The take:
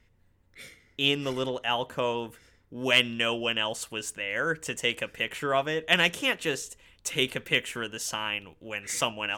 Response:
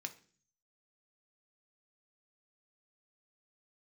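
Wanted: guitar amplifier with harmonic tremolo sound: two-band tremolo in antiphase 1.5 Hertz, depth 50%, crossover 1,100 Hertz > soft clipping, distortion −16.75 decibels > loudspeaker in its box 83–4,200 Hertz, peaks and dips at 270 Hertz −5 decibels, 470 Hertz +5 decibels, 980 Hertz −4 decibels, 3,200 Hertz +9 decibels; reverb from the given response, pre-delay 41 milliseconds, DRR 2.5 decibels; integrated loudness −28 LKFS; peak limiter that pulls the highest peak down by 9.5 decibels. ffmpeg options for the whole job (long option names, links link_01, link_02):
-filter_complex "[0:a]alimiter=limit=-18dB:level=0:latency=1,asplit=2[link_01][link_02];[1:a]atrim=start_sample=2205,adelay=41[link_03];[link_02][link_03]afir=irnorm=-1:irlink=0,volume=-0.5dB[link_04];[link_01][link_04]amix=inputs=2:normalize=0,acrossover=split=1100[link_05][link_06];[link_05]aeval=exprs='val(0)*(1-0.5/2+0.5/2*cos(2*PI*1.5*n/s))':channel_layout=same[link_07];[link_06]aeval=exprs='val(0)*(1-0.5/2-0.5/2*cos(2*PI*1.5*n/s))':channel_layout=same[link_08];[link_07][link_08]amix=inputs=2:normalize=0,asoftclip=threshold=-22.5dB,highpass=83,equalizer=frequency=270:width_type=q:width=4:gain=-5,equalizer=frequency=470:width_type=q:width=4:gain=5,equalizer=frequency=980:width_type=q:width=4:gain=-4,equalizer=frequency=3200:width_type=q:width=4:gain=9,lowpass=frequency=4200:width=0.5412,lowpass=frequency=4200:width=1.3066,volume=2dB"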